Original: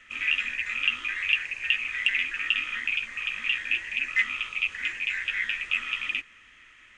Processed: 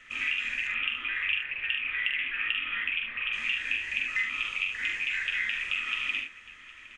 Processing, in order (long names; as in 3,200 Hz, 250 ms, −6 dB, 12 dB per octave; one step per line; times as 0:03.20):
0:00.67–0:03.33: Chebyshev low-pass filter 3,300 Hz, order 4
downward compressor, threshold −27 dBFS, peak gain reduction 9 dB
multi-tap delay 44/73/762 ms −5/−7/−18.5 dB